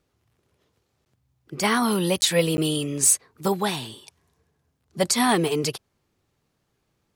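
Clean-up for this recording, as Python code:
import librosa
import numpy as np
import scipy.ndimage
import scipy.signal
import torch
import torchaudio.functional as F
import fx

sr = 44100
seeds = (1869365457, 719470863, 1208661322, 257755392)

y = fx.fix_declip(x, sr, threshold_db=-10.5)
y = fx.fix_interpolate(y, sr, at_s=(1.05, 2.21, 2.57), length_ms=10.0)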